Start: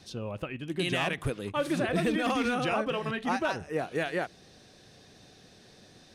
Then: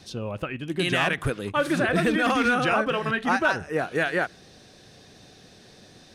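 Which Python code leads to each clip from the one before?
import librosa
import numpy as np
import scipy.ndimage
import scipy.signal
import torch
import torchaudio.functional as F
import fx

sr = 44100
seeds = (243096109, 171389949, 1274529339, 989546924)

y = fx.dynamic_eq(x, sr, hz=1500.0, q=2.4, threshold_db=-49.0, ratio=4.0, max_db=7)
y = y * librosa.db_to_amplitude(4.5)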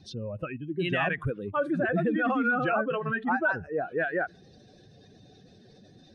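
y = fx.spec_expand(x, sr, power=1.9)
y = y * librosa.db_to_amplitude(-3.5)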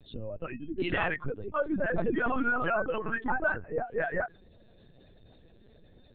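y = fx.lpc_vocoder(x, sr, seeds[0], excitation='pitch_kept', order=10)
y = y * librosa.db_to_amplitude(-2.0)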